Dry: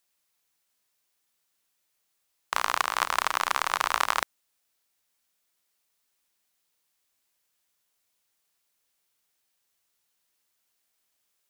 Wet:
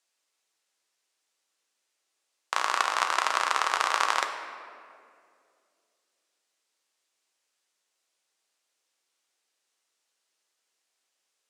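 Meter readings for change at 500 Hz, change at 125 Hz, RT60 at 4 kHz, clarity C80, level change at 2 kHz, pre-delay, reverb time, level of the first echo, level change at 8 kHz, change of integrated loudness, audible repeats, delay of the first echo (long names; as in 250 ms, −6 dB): +1.5 dB, can't be measured, 1.4 s, 8.0 dB, +0.5 dB, 5 ms, 2.3 s, no echo audible, −0.5 dB, +0.5 dB, no echo audible, no echo audible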